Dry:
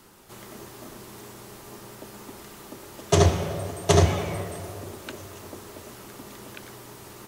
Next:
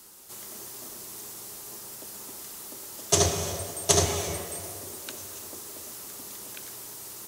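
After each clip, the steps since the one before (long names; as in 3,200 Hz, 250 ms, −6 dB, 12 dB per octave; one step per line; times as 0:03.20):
bass and treble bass −5 dB, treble +14 dB
convolution reverb, pre-delay 3 ms, DRR 10 dB
level −5 dB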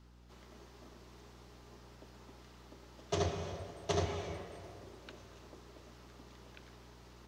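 mains hum 60 Hz, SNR 19 dB
high-frequency loss of the air 230 metres
level −8 dB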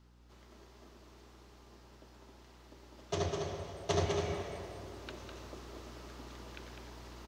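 speech leveller within 4 dB 2 s
single-tap delay 203 ms −5.5 dB
level +1.5 dB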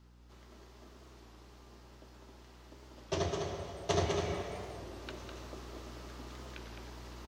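double-tracking delay 16 ms −13 dB
wow of a warped record 33 1/3 rpm, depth 100 cents
level +1 dB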